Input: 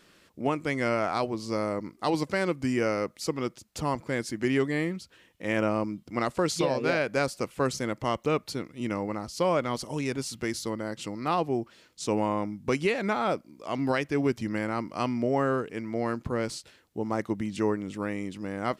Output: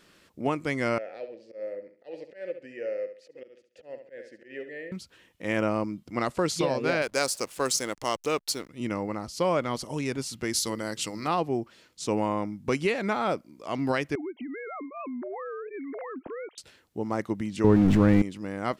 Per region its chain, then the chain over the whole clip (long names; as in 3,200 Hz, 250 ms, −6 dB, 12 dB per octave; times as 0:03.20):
0:00.98–0:04.92: flutter between parallel walls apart 11.9 metres, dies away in 0.41 s + volume swells 130 ms + formant filter e
0:07.02–0:08.69: bass and treble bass −11 dB, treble +13 dB + slack as between gear wheels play −42 dBFS
0:10.53–0:11.27: high-shelf EQ 2,600 Hz +11.5 dB + mains-hum notches 50/100/150/200/250/300/350/400/450 Hz
0:14.15–0:16.58: three sine waves on the formant tracks + downward compressor 5 to 1, threshold −34 dBFS
0:17.64–0:18.22: converter with a step at zero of −33 dBFS + RIAA equalisation playback + envelope flattener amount 70%
whole clip: no processing